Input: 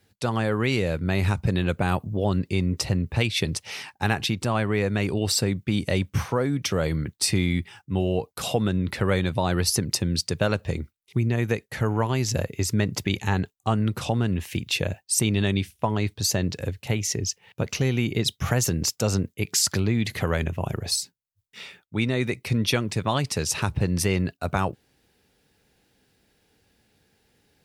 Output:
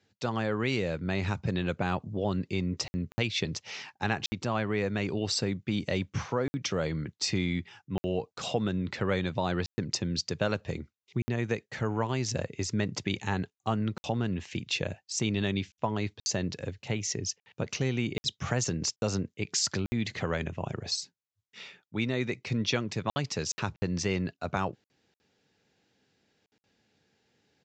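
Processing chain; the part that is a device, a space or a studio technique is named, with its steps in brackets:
call with lost packets (high-pass filter 110 Hz 12 dB per octave; downsampling to 16,000 Hz; dropped packets of 60 ms random)
level −5 dB

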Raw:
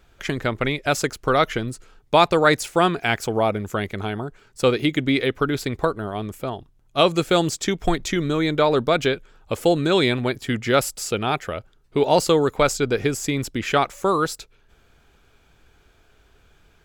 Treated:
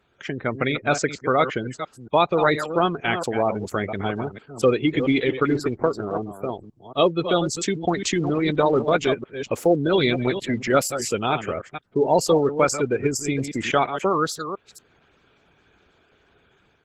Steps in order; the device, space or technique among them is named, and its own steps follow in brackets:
delay that plays each chunk backwards 231 ms, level −9 dB
0:05.47–0:07.11: dynamic equaliser 370 Hz, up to +5 dB, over −34 dBFS, Q 1.9
noise-suppressed video call (high-pass filter 110 Hz 12 dB per octave; gate on every frequency bin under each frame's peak −20 dB strong; automatic gain control gain up to 5.5 dB; level −4 dB; Opus 16 kbit/s 48,000 Hz)

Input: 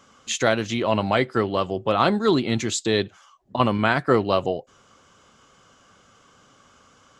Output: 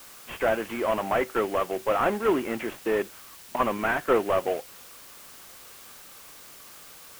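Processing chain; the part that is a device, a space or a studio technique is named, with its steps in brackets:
army field radio (band-pass filter 350–2,800 Hz; variable-slope delta modulation 16 kbit/s; white noise bed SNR 19 dB)

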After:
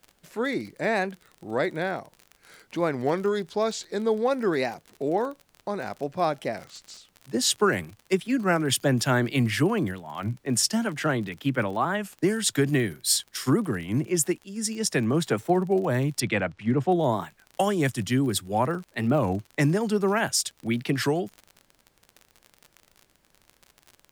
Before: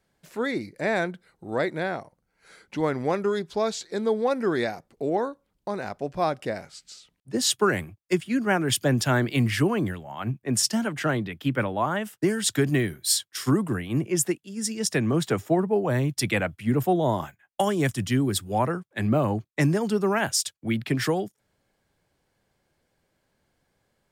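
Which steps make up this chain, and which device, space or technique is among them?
high-pass filter 100 Hz
warped LP (wow of a warped record 33 1/3 rpm, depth 160 cents; surface crackle 43 per second −34 dBFS; pink noise bed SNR 42 dB)
0:16.20–0:16.92: high-frequency loss of the air 110 metres

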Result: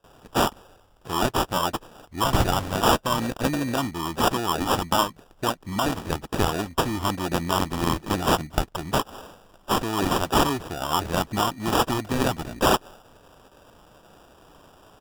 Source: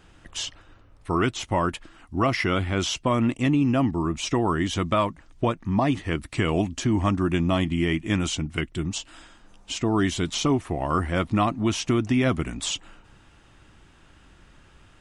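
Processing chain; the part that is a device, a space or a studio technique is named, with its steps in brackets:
noise gate with hold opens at −45 dBFS
tilt shelving filter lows −10 dB, about 1,200 Hz
crushed at another speed (tape speed factor 0.8×; decimation without filtering 26×; tape speed factor 1.25×)
level +2.5 dB

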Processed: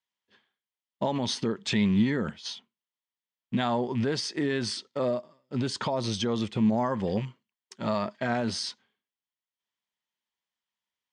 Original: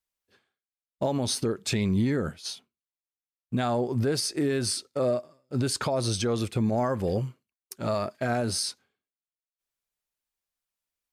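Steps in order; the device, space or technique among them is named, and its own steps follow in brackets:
car door speaker with a rattle (loose part that buzzes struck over −28 dBFS, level −36 dBFS; loudspeaker in its box 97–6,900 Hz, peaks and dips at 210 Hz +8 dB, 960 Hz +9 dB, 1,900 Hz +8 dB, 3,200 Hz +10 dB)
0:05.08–0:06.92: dynamic equaliser 2,100 Hz, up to −4 dB, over −43 dBFS, Q 0.84
level −3 dB

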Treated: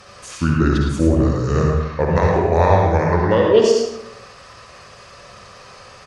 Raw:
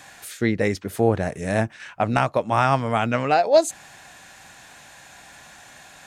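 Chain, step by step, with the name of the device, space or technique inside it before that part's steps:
monster voice (pitch shifter −6 semitones; low-shelf EQ 130 Hz +5 dB; single-tap delay 110 ms −9 dB; convolution reverb RT60 0.85 s, pre-delay 51 ms, DRR −1 dB)
level +1 dB

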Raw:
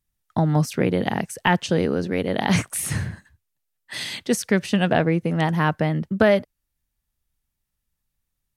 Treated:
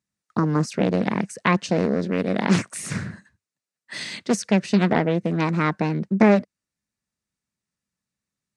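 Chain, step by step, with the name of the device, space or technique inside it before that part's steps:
full-range speaker at full volume (highs frequency-modulated by the lows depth 0.71 ms; loudspeaker in its box 150–8,600 Hz, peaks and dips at 200 Hz +6 dB, 820 Hz −5 dB, 3,200 Hz −7 dB)

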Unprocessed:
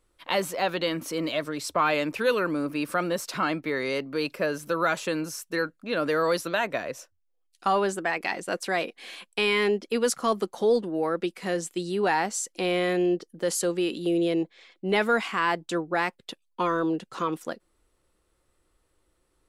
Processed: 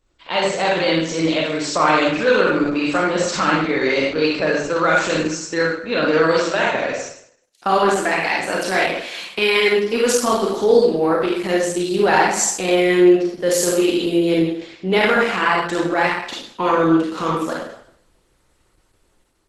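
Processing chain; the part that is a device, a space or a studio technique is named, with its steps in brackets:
0:14.99–0:15.72: high-shelf EQ 3,700 Hz −3 dB
speakerphone in a meeting room (convolution reverb RT60 0.65 s, pre-delay 30 ms, DRR −4 dB; automatic gain control gain up to 4 dB; level +2 dB; Opus 12 kbit/s 48,000 Hz)

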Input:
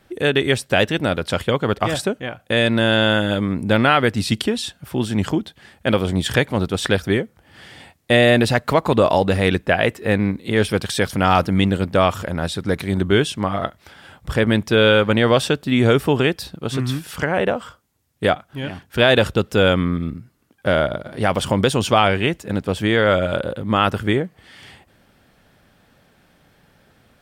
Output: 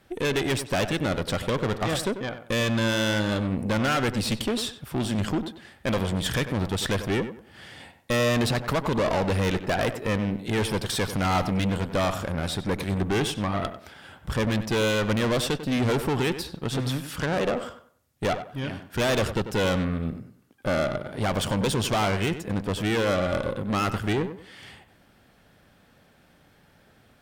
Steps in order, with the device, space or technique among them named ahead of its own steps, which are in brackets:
rockabilly slapback (tube saturation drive 21 dB, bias 0.6; tape delay 95 ms, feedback 31%, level −8.5 dB, low-pass 2,000 Hz)

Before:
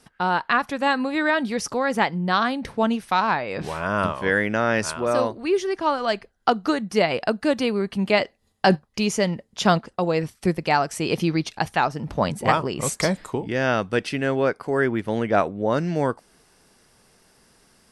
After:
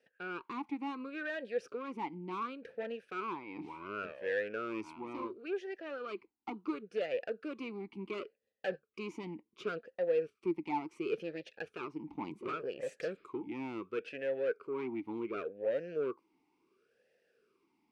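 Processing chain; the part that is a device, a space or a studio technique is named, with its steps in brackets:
talk box (tube saturation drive 20 dB, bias 0.6; formant filter swept between two vowels e-u 0.7 Hz)

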